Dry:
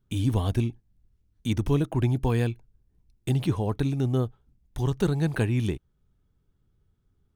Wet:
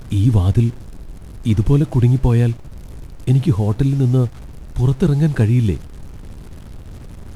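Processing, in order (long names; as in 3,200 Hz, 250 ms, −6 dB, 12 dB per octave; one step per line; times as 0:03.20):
linear delta modulator 64 kbit/s, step −39.5 dBFS
low-shelf EQ 300 Hz +10.5 dB
background noise brown −42 dBFS
level +2.5 dB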